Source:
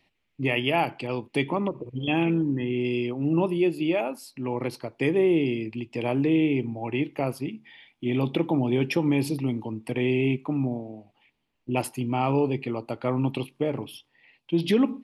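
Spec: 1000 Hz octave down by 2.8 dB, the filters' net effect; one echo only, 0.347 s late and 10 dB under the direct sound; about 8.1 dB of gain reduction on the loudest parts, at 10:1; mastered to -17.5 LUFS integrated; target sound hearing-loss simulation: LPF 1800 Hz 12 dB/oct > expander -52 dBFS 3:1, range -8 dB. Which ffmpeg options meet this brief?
-af "equalizer=f=1k:t=o:g=-3.5,acompressor=threshold=-26dB:ratio=10,lowpass=1.8k,aecho=1:1:347:0.316,agate=range=-8dB:threshold=-52dB:ratio=3,volume=14.5dB"

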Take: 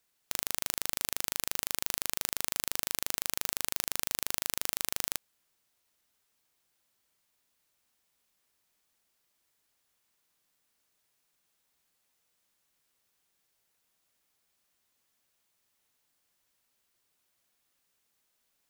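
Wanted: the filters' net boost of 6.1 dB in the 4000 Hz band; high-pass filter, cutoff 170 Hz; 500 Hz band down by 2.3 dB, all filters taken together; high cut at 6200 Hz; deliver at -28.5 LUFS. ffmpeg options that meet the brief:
-af "highpass=170,lowpass=6.2k,equalizer=f=500:t=o:g=-3,equalizer=f=4k:t=o:g=8.5,volume=5dB"

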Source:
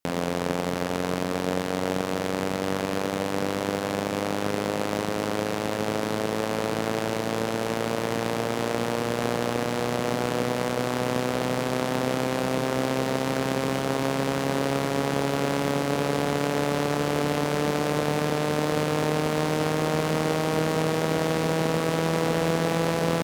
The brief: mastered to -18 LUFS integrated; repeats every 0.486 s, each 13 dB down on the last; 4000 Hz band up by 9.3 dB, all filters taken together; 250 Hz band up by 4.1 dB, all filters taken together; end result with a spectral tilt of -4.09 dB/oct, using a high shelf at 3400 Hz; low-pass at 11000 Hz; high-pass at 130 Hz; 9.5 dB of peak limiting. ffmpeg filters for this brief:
-af "highpass=130,lowpass=11k,equalizer=f=250:t=o:g=5.5,highshelf=f=3.4k:g=5.5,equalizer=f=4k:t=o:g=8,alimiter=limit=-13.5dB:level=0:latency=1,aecho=1:1:486|972|1458:0.224|0.0493|0.0108,volume=10.5dB"

